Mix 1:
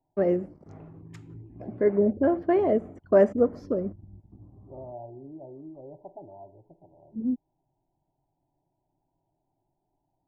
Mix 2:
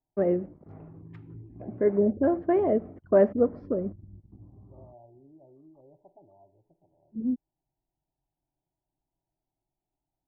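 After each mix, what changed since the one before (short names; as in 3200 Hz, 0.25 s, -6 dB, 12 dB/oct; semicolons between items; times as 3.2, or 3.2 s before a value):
second voice -10.5 dB; master: add air absorption 420 m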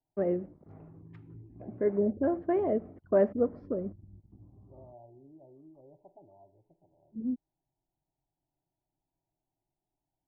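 first voice -4.5 dB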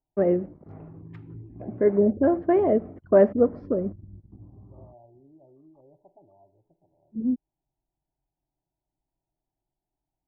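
first voice +7.5 dB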